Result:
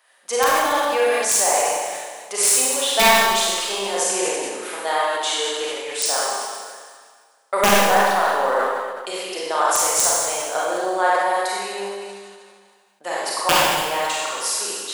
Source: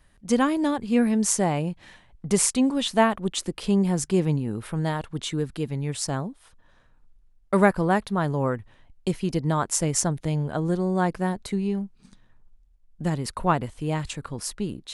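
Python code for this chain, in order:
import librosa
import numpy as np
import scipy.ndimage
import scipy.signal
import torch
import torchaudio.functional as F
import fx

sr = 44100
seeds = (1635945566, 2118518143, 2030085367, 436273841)

p1 = scipy.signal.sosfilt(scipy.signal.butter(4, 550.0, 'highpass', fs=sr, output='sos'), x)
p2 = fx.rider(p1, sr, range_db=4, speed_s=0.5)
p3 = p1 + (p2 * librosa.db_to_amplitude(-0.5))
p4 = (np.mod(10.0 ** (6.0 / 20.0) * p3 + 1.0, 2.0) - 1.0) / 10.0 ** (6.0 / 20.0)
p5 = fx.rev_schroeder(p4, sr, rt60_s=1.7, comb_ms=31, drr_db=-6.0)
p6 = fx.sustainer(p5, sr, db_per_s=33.0)
y = p6 * librosa.db_to_amplitude(-2.5)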